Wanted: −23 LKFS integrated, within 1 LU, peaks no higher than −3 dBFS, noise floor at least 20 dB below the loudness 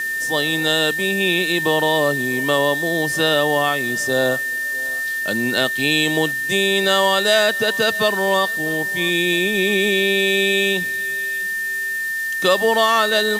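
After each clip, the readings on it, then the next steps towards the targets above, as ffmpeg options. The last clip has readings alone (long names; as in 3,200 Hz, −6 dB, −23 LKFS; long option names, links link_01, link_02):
interfering tone 1,800 Hz; level of the tone −21 dBFS; background noise floor −24 dBFS; target noise floor −38 dBFS; integrated loudness −18.0 LKFS; sample peak −2.5 dBFS; target loudness −23.0 LKFS
→ -af "bandreject=frequency=1800:width=30"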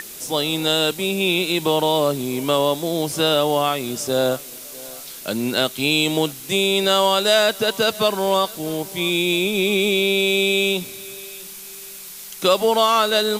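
interfering tone none found; background noise floor −37 dBFS; target noise floor −39 dBFS
→ -af "afftdn=noise_reduction=6:noise_floor=-37"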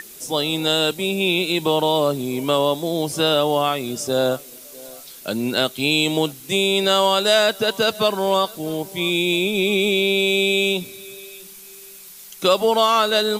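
background noise floor −41 dBFS; integrated loudness −19.5 LKFS; sample peak −3.5 dBFS; target loudness −23.0 LKFS
→ -af "volume=-3.5dB"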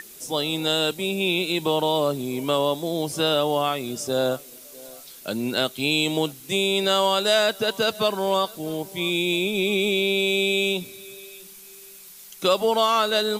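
integrated loudness −23.0 LKFS; sample peak −7.0 dBFS; background noise floor −45 dBFS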